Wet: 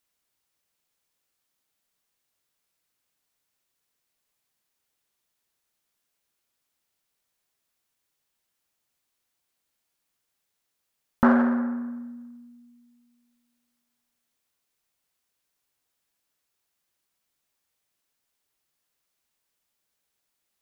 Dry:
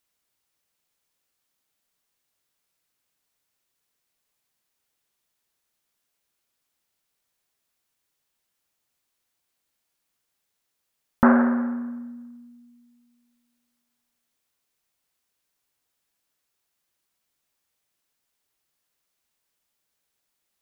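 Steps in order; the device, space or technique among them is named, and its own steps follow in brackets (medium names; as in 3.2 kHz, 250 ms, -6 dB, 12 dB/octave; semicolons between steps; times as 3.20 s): parallel distortion (in parallel at -12 dB: hard clipper -20.5 dBFS, distortion -6 dB); on the sum: trim -3 dB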